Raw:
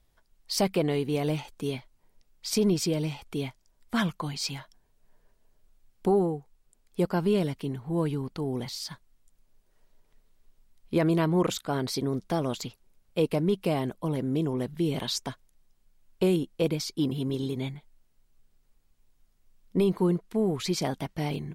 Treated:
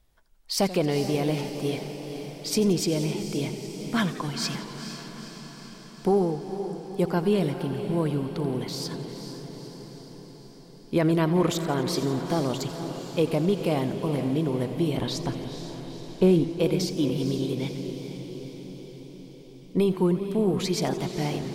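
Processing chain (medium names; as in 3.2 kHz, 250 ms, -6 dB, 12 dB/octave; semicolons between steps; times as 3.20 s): 14.97–16.49 s: tilt EQ -2 dB/octave; on a send: echo that smears into a reverb 473 ms, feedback 64%, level -9.5 dB; on the sum: modulated delay 88 ms, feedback 74%, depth 143 cents, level -15.5 dB; trim +1.5 dB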